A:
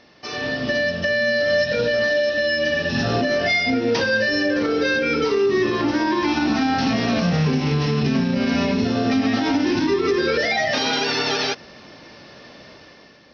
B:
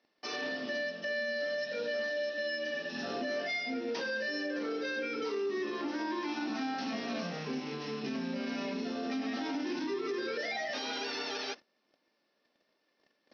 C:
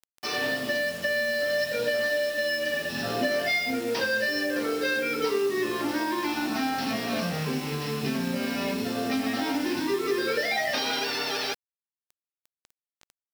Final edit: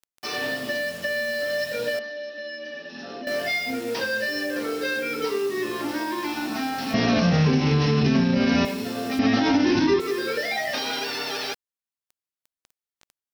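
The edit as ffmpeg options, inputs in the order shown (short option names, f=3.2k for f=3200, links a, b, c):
-filter_complex "[0:a]asplit=2[a][b];[2:a]asplit=4[c][d][e][f];[c]atrim=end=1.992[g];[1:a]atrim=start=1.988:end=3.272[h];[d]atrim=start=3.268:end=6.942[i];[a]atrim=start=6.938:end=8.652[j];[e]atrim=start=8.648:end=9.192[k];[b]atrim=start=9.188:end=10.002[l];[f]atrim=start=9.998[m];[g][h]acrossfade=d=0.004:c1=hsin:c2=hsin[n];[n][i]acrossfade=d=0.004:c1=hsin:c2=hsin[o];[o][j]acrossfade=d=0.004:c1=hsin:c2=hsin[p];[p][k]acrossfade=d=0.004:c1=hsin:c2=hsin[q];[q][l]acrossfade=d=0.004:c1=hsin:c2=hsin[r];[r][m]acrossfade=d=0.004:c1=hsin:c2=hsin"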